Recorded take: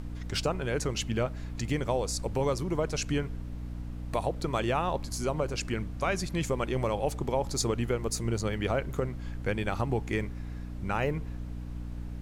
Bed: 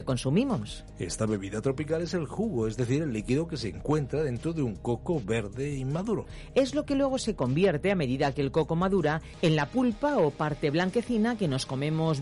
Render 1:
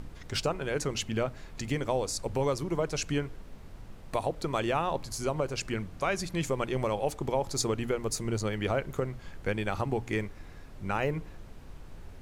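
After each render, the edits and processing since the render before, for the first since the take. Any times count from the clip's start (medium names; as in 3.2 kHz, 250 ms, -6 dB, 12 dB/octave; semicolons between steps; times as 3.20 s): hum notches 60/120/180/240/300 Hz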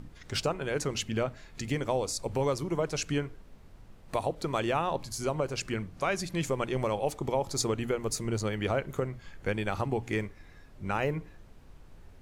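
noise print and reduce 6 dB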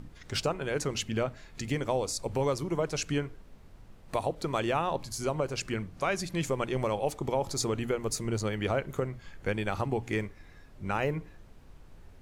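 7.32–7.81 s: transient shaper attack -3 dB, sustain +2 dB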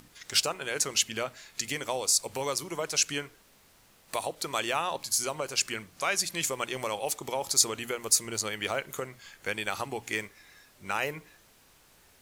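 tilt EQ +4 dB/octave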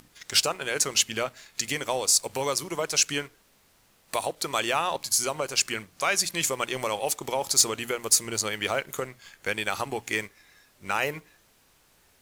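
waveshaping leveller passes 1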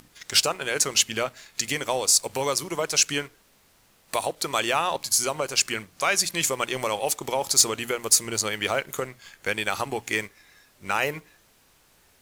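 trim +2 dB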